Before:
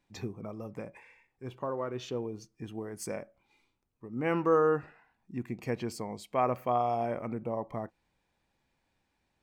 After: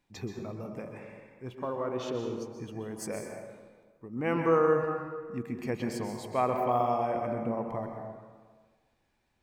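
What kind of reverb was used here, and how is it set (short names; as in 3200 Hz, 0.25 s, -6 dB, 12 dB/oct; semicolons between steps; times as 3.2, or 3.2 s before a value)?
plate-style reverb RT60 1.5 s, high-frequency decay 0.55×, pre-delay 0.115 s, DRR 3 dB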